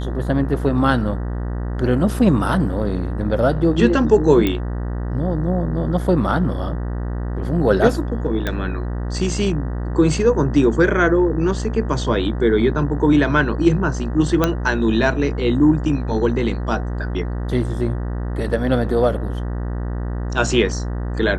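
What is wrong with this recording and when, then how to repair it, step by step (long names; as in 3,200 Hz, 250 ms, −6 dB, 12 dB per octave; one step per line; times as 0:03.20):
mains buzz 60 Hz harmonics 32 −24 dBFS
0:04.47: click −7 dBFS
0:08.47: click −9 dBFS
0:14.44: click −3 dBFS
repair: click removal
hum removal 60 Hz, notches 32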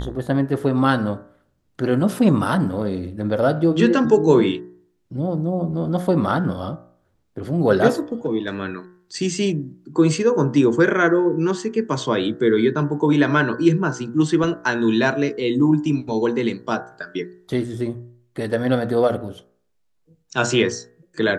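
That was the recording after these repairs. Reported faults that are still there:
none of them is left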